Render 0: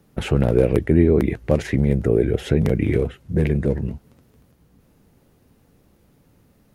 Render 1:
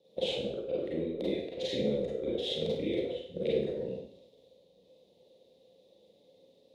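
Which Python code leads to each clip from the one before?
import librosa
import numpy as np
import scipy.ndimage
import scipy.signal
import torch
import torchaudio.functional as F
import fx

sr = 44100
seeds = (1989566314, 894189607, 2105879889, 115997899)

y = fx.double_bandpass(x, sr, hz=1400.0, octaves=2.8)
y = fx.over_compress(y, sr, threshold_db=-35.0, ratio=-0.5)
y = fx.rev_schroeder(y, sr, rt60_s=0.62, comb_ms=33, drr_db=-6.0)
y = F.gain(torch.from_numpy(y), -3.5).numpy()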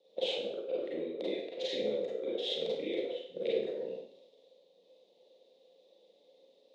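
y = fx.bandpass_edges(x, sr, low_hz=390.0, high_hz=6500.0)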